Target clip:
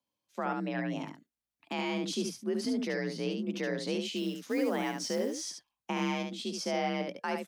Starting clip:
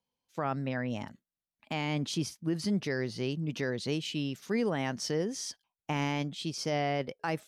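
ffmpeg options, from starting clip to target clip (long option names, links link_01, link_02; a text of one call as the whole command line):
ffmpeg -i in.wav -filter_complex "[0:a]asettb=1/sr,asplit=3[link_01][link_02][link_03];[link_01]atrim=end=4.164[link_04];[link_02]atrim=start=4.16:end=5.42,asetpts=PTS-STARTPTS,afade=type=in:duration=0.004:curve=qsin,afade=type=out:start_time=1.256:duration=0.004:curve=qsin,acrusher=bits=6:mode=log:mix=0:aa=0.000001[link_05];[link_03]atrim=start=5.416[link_06];[link_04][link_05]acrossfade=duration=0.004:curve1=hsin:curve2=qsin[link_07];[link_07][link_06]acrossfade=duration=0.004:curve1=qsin:curve2=hsin,aecho=1:1:71:0.531,afreqshift=50,volume=-1.5dB" out.wav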